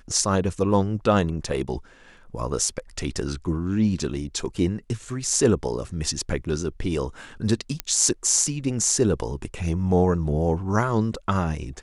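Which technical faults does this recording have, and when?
0:07.80: click −9 dBFS

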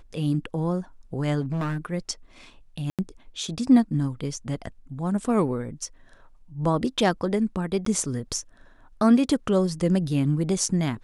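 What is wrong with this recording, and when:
0:01.40–0:01.86: clipping −24 dBFS
0:02.90–0:02.99: drop-out 87 ms
0:07.85–0:07.86: drop-out

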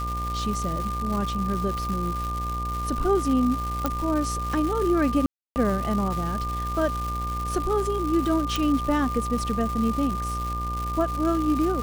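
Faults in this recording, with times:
mains buzz 60 Hz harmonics 16 −31 dBFS
surface crackle 390 per second −29 dBFS
whistle 1,200 Hz −29 dBFS
0:03.86: click
0:05.26–0:05.56: drop-out 299 ms
0:08.56: click

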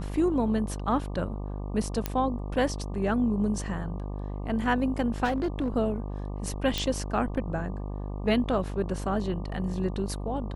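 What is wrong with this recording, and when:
mains buzz 50 Hz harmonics 24 −34 dBFS
0:02.06: click −12 dBFS
0:05.24–0:05.68: clipping −23 dBFS
0:06.78: click

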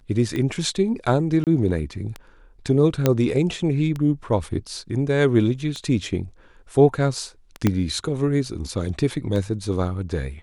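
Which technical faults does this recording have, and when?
scratch tick 33 1/3 rpm −16 dBFS
0:01.44–0:01.47: drop-out 28 ms
0:03.06: click −4 dBFS
0:07.67: click −6 dBFS

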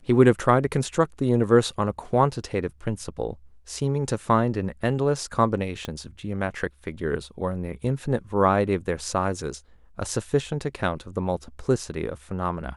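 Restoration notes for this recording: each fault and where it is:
0:05.85: click −16 dBFS

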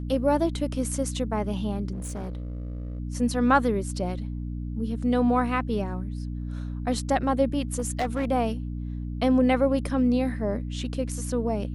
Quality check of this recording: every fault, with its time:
mains hum 60 Hz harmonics 5 −32 dBFS
0:01.93–0:03.00: clipping −29.5 dBFS
0:07.78–0:08.25: clipping −21.5 dBFS

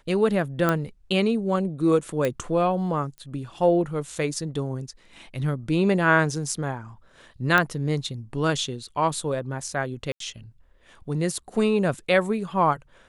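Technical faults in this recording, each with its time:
0:00.69: click −9 dBFS
0:02.25: click −12 dBFS
0:03.18: click −28 dBFS
0:07.58: click −7 dBFS
0:10.12–0:10.20: drop-out 83 ms

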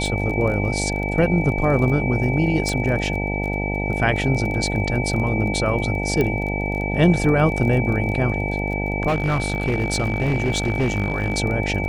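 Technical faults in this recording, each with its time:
mains buzz 50 Hz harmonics 18 −25 dBFS
surface crackle 22 per second −28 dBFS
whistle 2,300 Hz −27 dBFS
0:02.69: click −11 dBFS
0:06.21: click −9 dBFS
0:09.07–0:11.39: clipping −15.5 dBFS

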